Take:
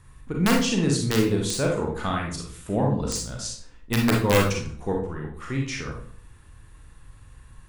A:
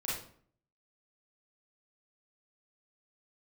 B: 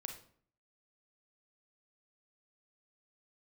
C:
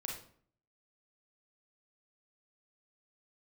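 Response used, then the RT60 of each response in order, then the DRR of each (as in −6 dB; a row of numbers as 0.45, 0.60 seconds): C; 0.55, 0.55, 0.55 seconds; −7.5, 4.0, −1.0 decibels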